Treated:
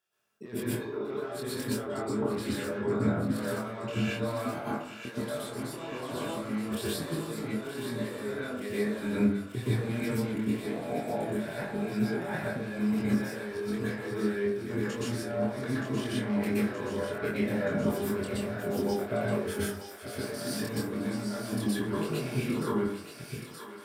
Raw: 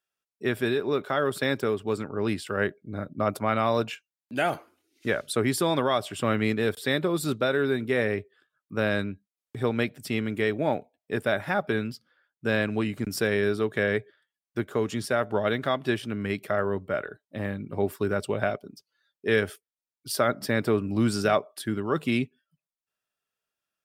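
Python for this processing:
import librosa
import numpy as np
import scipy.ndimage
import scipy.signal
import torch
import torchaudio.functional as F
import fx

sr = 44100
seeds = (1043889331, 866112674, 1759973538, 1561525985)

y = fx.reverse_delay(x, sr, ms=494, wet_db=-9.5)
y = 10.0 ** (-23.5 / 20.0) * np.tanh(y / 10.0 ** (-23.5 / 20.0))
y = fx.low_shelf(y, sr, hz=220.0, db=-8.0)
y = fx.hum_notches(y, sr, base_hz=50, count=8)
y = fx.over_compress(y, sr, threshold_db=-42.0, ratio=-1.0)
y = fx.peak_eq(y, sr, hz=150.0, db=9.5, octaves=3.0)
y = fx.doubler(y, sr, ms=24.0, db=-2.5)
y = fx.echo_thinned(y, sr, ms=924, feedback_pct=82, hz=890.0, wet_db=-8.5)
y = fx.rev_plate(y, sr, seeds[0], rt60_s=0.5, hf_ratio=0.4, predelay_ms=110, drr_db=-8.5)
y = y * librosa.db_to_amplitude(-7.5)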